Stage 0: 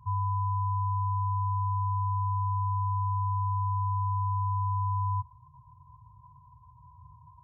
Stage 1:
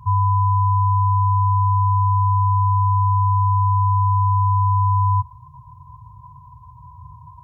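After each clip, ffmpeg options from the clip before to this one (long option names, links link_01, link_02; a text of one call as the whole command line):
ffmpeg -i in.wav -af "acontrast=35,volume=6.5dB" out.wav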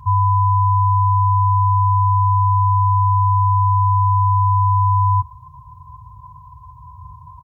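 ffmpeg -i in.wav -af "aecho=1:1:3.7:0.43,volume=3.5dB" out.wav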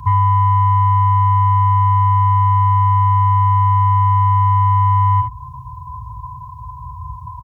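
ffmpeg -i in.wav -filter_complex "[0:a]acontrast=82,asplit=2[link_01][link_02];[link_02]aecho=0:1:38|55|71:0.299|0.422|0.299[link_03];[link_01][link_03]amix=inputs=2:normalize=0,acrossover=split=440|930[link_04][link_05][link_06];[link_04]acompressor=threshold=-14dB:ratio=4[link_07];[link_05]acompressor=threshold=-27dB:ratio=4[link_08];[link_06]acompressor=threshold=-22dB:ratio=4[link_09];[link_07][link_08][link_09]amix=inputs=3:normalize=0" out.wav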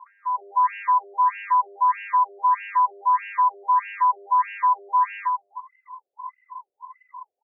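ffmpeg -i in.wav -filter_complex "[0:a]aeval=exprs='0.501*(cos(1*acos(clip(val(0)/0.501,-1,1)))-cos(1*PI/2))+0.0282*(cos(8*acos(clip(val(0)/0.501,-1,1)))-cos(8*PI/2))':channel_layout=same,acrossover=split=980[link_01][link_02];[link_02]adelay=320[link_03];[link_01][link_03]amix=inputs=2:normalize=0,afftfilt=real='re*between(b*sr/1024,500*pow(2100/500,0.5+0.5*sin(2*PI*1.6*pts/sr))/1.41,500*pow(2100/500,0.5+0.5*sin(2*PI*1.6*pts/sr))*1.41)':imag='im*between(b*sr/1024,500*pow(2100/500,0.5+0.5*sin(2*PI*1.6*pts/sr))/1.41,500*pow(2100/500,0.5+0.5*sin(2*PI*1.6*pts/sr))*1.41)':win_size=1024:overlap=0.75" out.wav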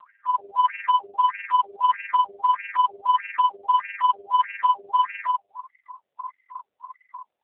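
ffmpeg -i in.wav -filter_complex "[0:a]asplit=2[link_01][link_02];[link_02]aeval=exprs='0.237*sin(PI/2*1.78*val(0)/0.237)':channel_layout=same,volume=-9dB[link_03];[link_01][link_03]amix=inputs=2:normalize=0,tremolo=f=20:d=0.667" -ar 8000 -c:a libopencore_amrnb -b:a 5900 out.amr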